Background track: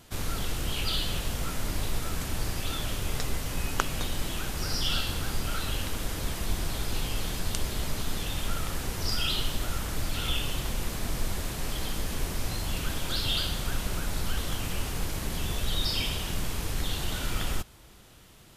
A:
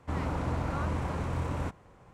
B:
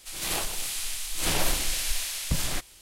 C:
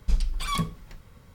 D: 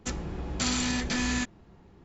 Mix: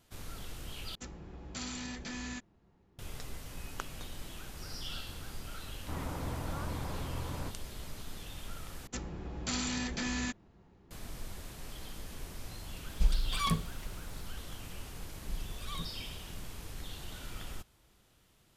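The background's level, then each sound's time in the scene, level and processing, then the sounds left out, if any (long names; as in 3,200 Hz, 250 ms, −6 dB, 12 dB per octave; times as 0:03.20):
background track −13 dB
0:00.95: overwrite with D −12.5 dB
0:05.80: mix in A −7 dB
0:08.87: overwrite with D −6.5 dB
0:12.92: mix in C −3.5 dB
0:15.20: mix in C −16 dB + pitch vibrato 10 Hz 69 cents
not used: B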